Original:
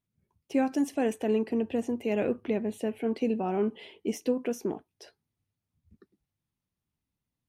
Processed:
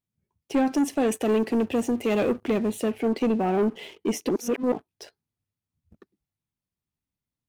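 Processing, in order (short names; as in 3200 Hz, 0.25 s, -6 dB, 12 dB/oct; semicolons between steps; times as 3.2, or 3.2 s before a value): sample leveller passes 2; 1.12–2.92 high shelf 4200 Hz +6 dB; 4.29–4.72 reverse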